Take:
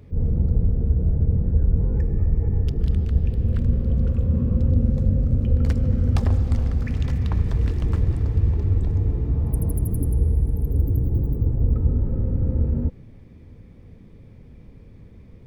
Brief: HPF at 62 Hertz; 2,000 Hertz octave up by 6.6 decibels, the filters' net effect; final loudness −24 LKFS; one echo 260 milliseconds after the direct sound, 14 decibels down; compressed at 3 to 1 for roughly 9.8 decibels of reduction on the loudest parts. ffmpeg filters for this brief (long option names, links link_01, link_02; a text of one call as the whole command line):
ffmpeg -i in.wav -af "highpass=62,equalizer=frequency=2000:width_type=o:gain=8,acompressor=threshold=-30dB:ratio=3,aecho=1:1:260:0.2,volume=8.5dB" out.wav